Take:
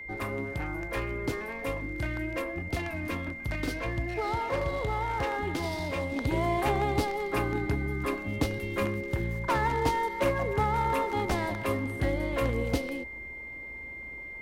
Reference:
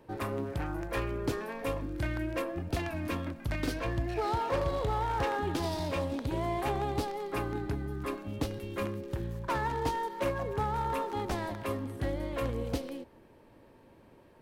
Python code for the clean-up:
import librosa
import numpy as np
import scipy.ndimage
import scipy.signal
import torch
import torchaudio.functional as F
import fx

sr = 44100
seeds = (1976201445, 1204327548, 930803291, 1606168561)

y = fx.notch(x, sr, hz=2100.0, q=30.0)
y = fx.noise_reduce(y, sr, print_start_s=13.85, print_end_s=14.35, reduce_db=8.0)
y = fx.gain(y, sr, db=fx.steps((0.0, 0.0), (6.16, -4.5)))